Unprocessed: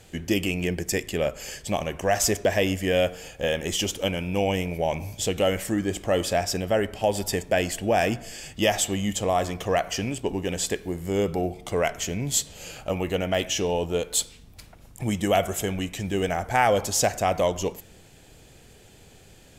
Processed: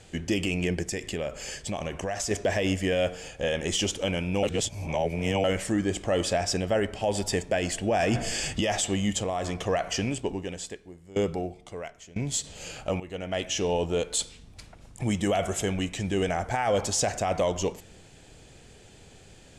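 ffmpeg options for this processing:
ffmpeg -i in.wav -filter_complex "[0:a]asettb=1/sr,asplit=3[link_01][link_02][link_03];[link_01]atrim=end=0.864[link_04];[link_02]atrim=start=0.86:end=2.31,asetpts=PTS-STARTPTS,afade=type=in:duration=0.004:curve=qsin,afade=type=out:start_time=1.446:duration=0.004:curve=qsin,acompressor=threshold=-27dB:ratio=6:attack=3.2:release=140:knee=1:detection=peak[link_05];[link_03]atrim=start=2.306[link_06];[link_04][link_05]acrossfade=duration=0.004:curve1=hsin:curve2=qsin[link_07];[link_07][link_06]acrossfade=duration=0.004:curve1=qsin:curve2=hsin,asettb=1/sr,asplit=3[link_08][link_09][link_10];[link_08]atrim=end=9.184[link_11];[link_09]atrim=start=9.18:end=9.62,asetpts=PTS-STARTPTS,afade=type=in:duration=0.004:curve=qsin,afade=type=out:start_time=0.436:duration=0.004:curve=qsin,acompressor=threshold=-25dB:ratio=6:attack=3.2:release=140:knee=1:detection=peak[link_12];[link_10]atrim=start=9.616[link_13];[link_11][link_12]acrossfade=duration=0.004:curve1=hsin:curve2=qsin[link_14];[link_14][link_13]acrossfade=duration=0.004:curve1=qsin:curve2=hsin,asettb=1/sr,asplit=3[link_15][link_16][link_17];[link_15]atrim=end=10.164[link_18];[link_16]atrim=start=10.16:end=12.44,asetpts=PTS-STARTPTS,afade=type=in:duration=0.004:curve=qsin,afade=type=out:start_time=2.276:duration=0.004:curve=qsin,aeval=exprs='val(0)*pow(10,-21*if(lt(mod(1*n/s,1),2*abs(1)/1000),1-mod(1*n/s,1)/(2*abs(1)/1000),(mod(1*n/s,1)-2*abs(1)/1000)/(1-2*abs(1)/1000))/20)':channel_layout=same[link_19];[link_17]atrim=start=12.436[link_20];[link_18][link_19]acrossfade=duration=0.004:curve1=hsin:curve2=qsin[link_21];[link_21][link_20]acrossfade=duration=0.004:curve1=qsin:curve2=hsin,asplit=6[link_22][link_23][link_24][link_25][link_26][link_27];[link_22]atrim=end=4.432[link_28];[link_23]atrim=start=4.428:end=5.442,asetpts=PTS-STARTPTS,areverse[link_29];[link_24]atrim=start=5.438:end=7.992[link_30];[link_25]atrim=start=7.988:end=8.612,asetpts=PTS-STARTPTS,volume=9dB[link_31];[link_26]atrim=start=8.608:end=13,asetpts=PTS-STARTPTS,afade=type=out:start_time=4.388:duration=0.004:curve=hsin:silence=0.158489[link_32];[link_27]atrim=start=13,asetpts=PTS-STARTPTS,afade=type=in:duration=0.8:silence=0.158489[link_33];[link_28][link_29]acrossfade=duration=0.004:curve1=hsin:curve2=hsin[link_34];[link_34][link_30]acrossfade=duration=0.004:curve1=hsin:curve2=hsin[link_35];[link_35][link_31]acrossfade=duration=0.004:curve1=hsin:curve2=hsin[link_36];[link_32][link_33]concat=n=2:v=0:a=1[link_37];[link_36][link_37]acrossfade=duration=0.004:curve1=hsin:curve2=hsin,lowpass=frequency=9500:width=0.5412,lowpass=frequency=9500:width=1.3066,alimiter=limit=-16.5dB:level=0:latency=1:release=18" out.wav

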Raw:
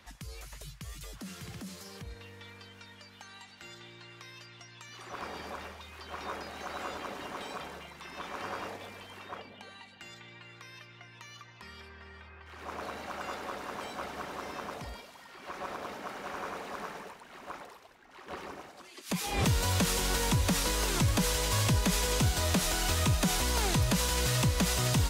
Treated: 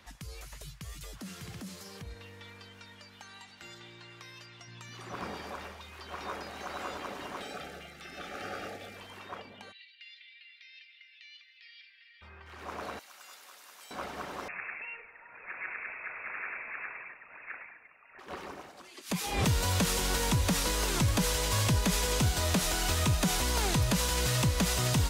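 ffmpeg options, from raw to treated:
ffmpeg -i in.wav -filter_complex "[0:a]asettb=1/sr,asplit=3[link_01][link_02][link_03];[link_01]atrim=end=4.674[link_04];[link_02]atrim=start=4.67:end=5.35,asetpts=PTS-STARTPTS,afade=type=in:duration=0.004:curve=qsin,afade=type=out:start_time=0.676:duration=0.004:curve=qsin,equalizer=frequency=160:width=0.79:gain=9[link_05];[link_03]atrim=start=5.346[link_06];[link_04][link_05]acrossfade=duration=0.004:curve1=hsin:curve2=qsin[link_07];[link_07][link_06]acrossfade=duration=0.004:curve1=qsin:curve2=hsin,asettb=1/sr,asplit=3[link_08][link_09][link_10];[link_08]atrim=end=7.414[link_11];[link_09]atrim=start=7.41:end=8.97,asetpts=PTS-STARTPTS,afade=type=in:duration=0.004:curve=qsin,afade=type=out:start_time=1.556:duration=0.004:curve=qsin,asuperstop=centerf=1000:order=12:qfactor=3.4[link_12];[link_10]atrim=start=8.966[link_13];[link_11][link_12]acrossfade=duration=0.004:curve1=hsin:curve2=qsin[link_14];[link_14][link_13]acrossfade=duration=0.004:curve1=qsin:curve2=hsin,asplit=3[link_15][link_16][link_17];[link_15]afade=type=out:start_time=9.71:duration=0.02[link_18];[link_16]asuperpass=centerf=3100:order=8:qfactor=1.1,afade=type=in:start_time=9.71:duration=0.02,afade=type=out:start_time=12.21:duration=0.02[link_19];[link_17]afade=type=in:start_time=12.21:duration=0.02[link_20];[link_18][link_19][link_20]amix=inputs=3:normalize=0,asettb=1/sr,asplit=3[link_21][link_22][link_23];[link_21]atrim=end=12.994[link_24];[link_22]atrim=start=12.99:end=13.91,asetpts=PTS-STARTPTS,afade=type=in:duration=0.004:curve=qsin,afade=type=out:start_time=0.916:duration=0.004:curve=qsin,aderivative[link_25];[link_23]atrim=start=13.906[link_26];[link_24][link_25]acrossfade=duration=0.004:curve1=hsin:curve2=qsin[link_27];[link_27][link_26]acrossfade=duration=0.004:curve1=qsin:curve2=hsin,asettb=1/sr,asplit=3[link_28][link_29][link_30];[link_28]atrim=end=14.484[link_31];[link_29]atrim=start=14.48:end=18.19,asetpts=PTS-STARTPTS,afade=type=in:duration=0.004:curve=qsin,afade=type=out:start_time=3.706:duration=0.004:curve=qsin,lowpass=frequency=2400:width_type=q:width=0.5098,lowpass=frequency=2400:width_type=q:width=0.6013,lowpass=frequency=2400:width_type=q:width=0.9,lowpass=frequency=2400:width_type=q:width=2.563,afreqshift=-2800[link_32];[link_30]atrim=start=18.186[link_33];[link_31][link_32]acrossfade=duration=0.004:curve1=hsin:curve2=qsin[link_34];[link_34][link_33]acrossfade=duration=0.004:curve1=qsin:curve2=hsin" out.wav

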